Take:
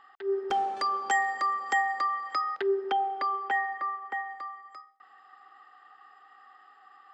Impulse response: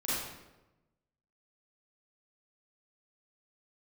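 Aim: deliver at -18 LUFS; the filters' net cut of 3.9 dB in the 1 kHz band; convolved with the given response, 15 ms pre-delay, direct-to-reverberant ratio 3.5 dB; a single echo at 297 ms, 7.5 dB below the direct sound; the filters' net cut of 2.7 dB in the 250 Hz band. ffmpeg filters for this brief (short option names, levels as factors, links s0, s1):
-filter_complex "[0:a]equalizer=f=250:t=o:g=-5.5,equalizer=f=1000:t=o:g=-5,aecho=1:1:297:0.422,asplit=2[s0][s1];[1:a]atrim=start_sample=2205,adelay=15[s2];[s1][s2]afir=irnorm=-1:irlink=0,volume=0.316[s3];[s0][s3]amix=inputs=2:normalize=0,volume=3.55"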